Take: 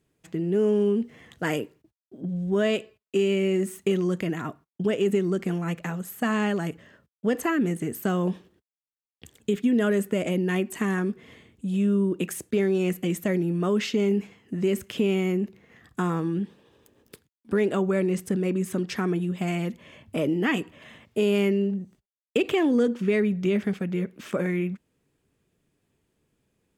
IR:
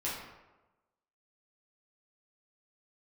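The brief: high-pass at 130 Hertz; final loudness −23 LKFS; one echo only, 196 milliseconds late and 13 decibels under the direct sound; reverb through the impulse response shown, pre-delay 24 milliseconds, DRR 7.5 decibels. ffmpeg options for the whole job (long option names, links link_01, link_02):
-filter_complex "[0:a]highpass=130,aecho=1:1:196:0.224,asplit=2[link_01][link_02];[1:a]atrim=start_sample=2205,adelay=24[link_03];[link_02][link_03]afir=irnorm=-1:irlink=0,volume=-12dB[link_04];[link_01][link_04]amix=inputs=2:normalize=0,volume=3dB"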